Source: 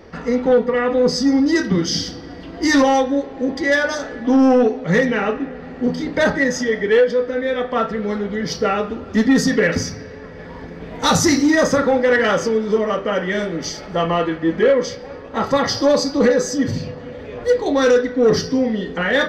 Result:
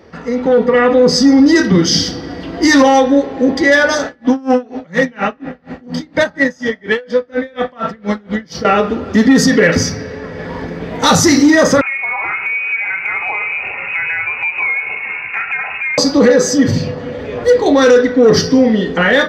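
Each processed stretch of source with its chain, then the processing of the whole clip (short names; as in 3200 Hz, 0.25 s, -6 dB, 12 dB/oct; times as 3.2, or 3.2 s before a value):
4.06–8.65 bell 430 Hz -10 dB 0.22 oct + dB-linear tremolo 4.2 Hz, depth 30 dB
11.81–15.98 inverted band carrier 2700 Hz + compressor 4:1, threshold -28 dBFS
whole clip: HPF 64 Hz; limiter -11 dBFS; AGC gain up to 11 dB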